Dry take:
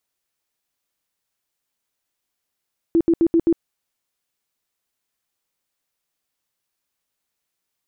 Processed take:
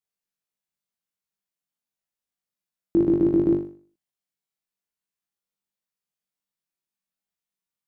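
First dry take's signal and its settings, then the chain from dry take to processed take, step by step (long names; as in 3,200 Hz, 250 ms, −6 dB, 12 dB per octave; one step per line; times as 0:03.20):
tone bursts 333 Hz, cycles 19, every 0.13 s, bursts 5, −12 dBFS
parametric band 180 Hz +15 dB 0.27 octaves
output level in coarse steps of 19 dB
on a send: flutter between parallel walls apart 3.5 metres, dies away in 0.44 s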